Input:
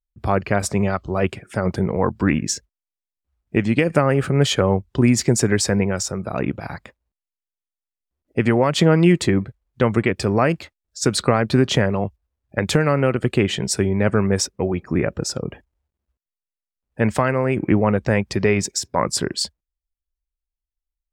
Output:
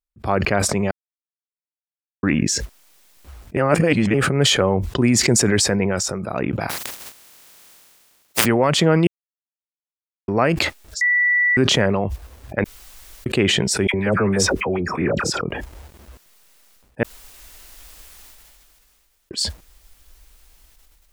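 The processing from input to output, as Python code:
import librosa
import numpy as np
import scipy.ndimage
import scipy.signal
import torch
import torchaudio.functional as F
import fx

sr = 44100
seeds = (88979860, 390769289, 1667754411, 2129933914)

y = fx.spec_flatten(x, sr, power=0.13, at=(6.69, 8.44), fade=0.02)
y = fx.dispersion(y, sr, late='lows', ms=69.0, hz=1200.0, at=(13.87, 15.41))
y = fx.edit(y, sr, fx.silence(start_s=0.91, length_s=1.32),
    fx.reverse_span(start_s=3.57, length_s=0.57),
    fx.silence(start_s=9.07, length_s=1.21),
    fx.bleep(start_s=11.01, length_s=0.56, hz=1960.0, db=-14.0),
    fx.room_tone_fill(start_s=12.64, length_s=0.62),
    fx.room_tone_fill(start_s=17.03, length_s=2.28), tone=tone)
y = fx.low_shelf(y, sr, hz=150.0, db=-6.5)
y = fx.sustainer(y, sr, db_per_s=22.0)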